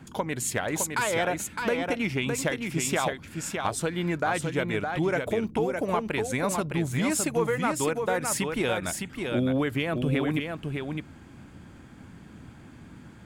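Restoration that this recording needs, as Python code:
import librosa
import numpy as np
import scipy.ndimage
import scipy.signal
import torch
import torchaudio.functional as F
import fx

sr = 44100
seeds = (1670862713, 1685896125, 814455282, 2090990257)

y = fx.fix_declip(x, sr, threshold_db=-15.5)
y = fx.noise_reduce(y, sr, print_start_s=11.48, print_end_s=11.98, reduce_db=27.0)
y = fx.fix_echo_inverse(y, sr, delay_ms=611, level_db=-5.0)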